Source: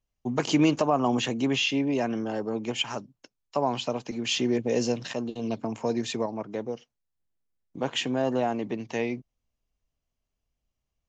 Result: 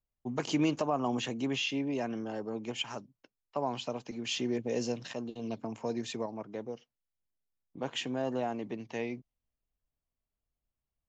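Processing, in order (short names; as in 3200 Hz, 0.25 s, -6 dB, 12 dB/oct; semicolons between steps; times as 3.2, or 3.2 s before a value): low-pass opened by the level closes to 2200 Hz, open at -26 dBFS; gain -7 dB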